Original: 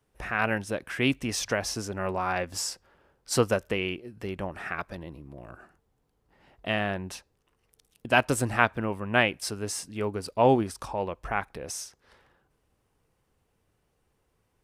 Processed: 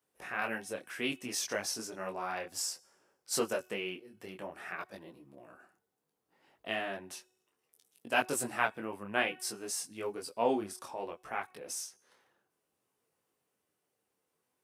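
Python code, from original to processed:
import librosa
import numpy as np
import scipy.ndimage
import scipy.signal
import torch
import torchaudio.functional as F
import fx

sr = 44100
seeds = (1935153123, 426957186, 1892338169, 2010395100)

y = scipy.signal.sosfilt(scipy.signal.butter(2, 220.0, 'highpass', fs=sr, output='sos'), x)
y = fx.high_shelf(y, sr, hz=7000.0, db=9.5)
y = fx.comb_fb(y, sr, f0_hz=370.0, decay_s=0.84, harmonics='all', damping=0.0, mix_pct=40)
y = fx.detune_double(y, sr, cents=21)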